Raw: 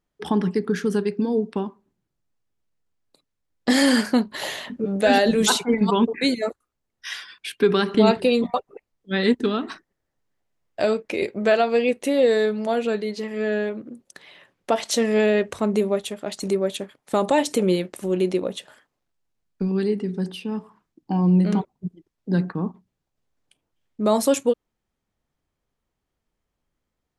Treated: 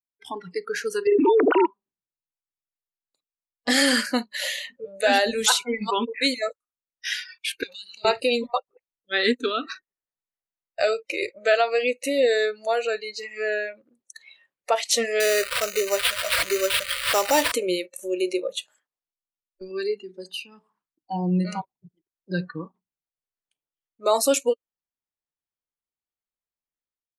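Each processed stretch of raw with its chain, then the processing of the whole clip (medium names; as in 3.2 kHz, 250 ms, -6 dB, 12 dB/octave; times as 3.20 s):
1.07–1.66 s: formants replaced by sine waves + level flattener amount 100%
7.63–8.05 s: FFT filter 120 Hz 0 dB, 630 Hz -25 dB, 2.2 kHz +1 dB, 4.6 kHz +10 dB + compression 12:1, threshold -33 dBFS + transformer saturation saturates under 1.8 kHz
15.20–17.52 s: zero-crossing glitches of -16 dBFS + low-pass 10 kHz + sample-rate reducer 6.5 kHz
whole clip: spectral noise reduction 21 dB; bass shelf 480 Hz -11.5 dB; level rider gain up to 9 dB; trim -4 dB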